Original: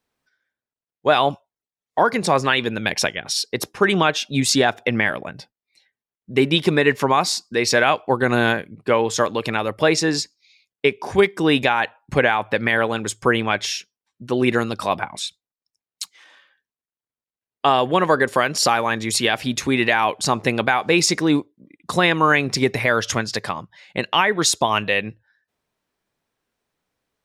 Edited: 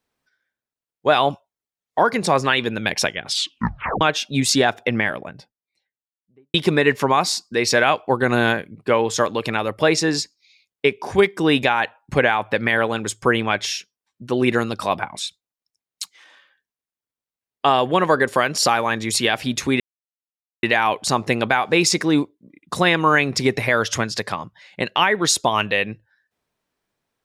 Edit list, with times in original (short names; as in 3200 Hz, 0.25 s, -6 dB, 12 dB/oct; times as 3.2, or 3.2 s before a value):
3.26 tape stop 0.75 s
4.75–6.54 studio fade out
19.8 insert silence 0.83 s